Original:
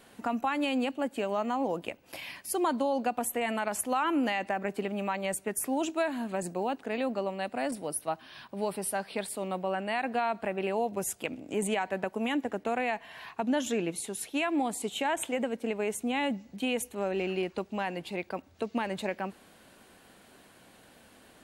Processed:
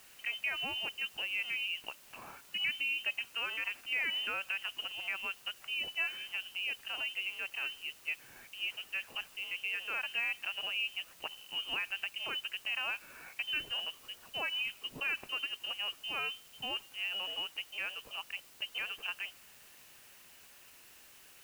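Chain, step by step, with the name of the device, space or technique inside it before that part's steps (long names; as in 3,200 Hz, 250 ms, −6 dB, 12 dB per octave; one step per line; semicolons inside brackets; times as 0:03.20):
scrambled radio voice (band-pass filter 340–2,700 Hz; voice inversion scrambler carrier 3,300 Hz; white noise bed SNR 19 dB)
level −5 dB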